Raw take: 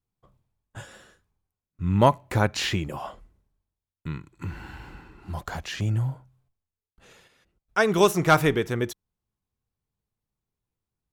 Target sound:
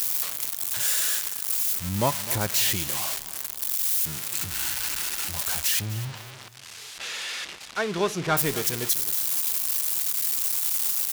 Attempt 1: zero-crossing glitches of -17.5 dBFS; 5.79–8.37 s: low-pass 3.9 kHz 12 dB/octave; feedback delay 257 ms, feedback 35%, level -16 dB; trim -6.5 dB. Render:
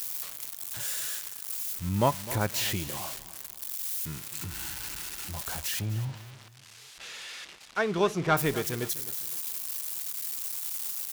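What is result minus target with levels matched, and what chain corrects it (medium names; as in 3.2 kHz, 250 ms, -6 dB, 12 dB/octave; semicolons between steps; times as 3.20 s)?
zero-crossing glitches: distortion -9 dB
zero-crossing glitches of -8.5 dBFS; 5.79–8.37 s: low-pass 3.9 kHz 12 dB/octave; feedback delay 257 ms, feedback 35%, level -16 dB; trim -6.5 dB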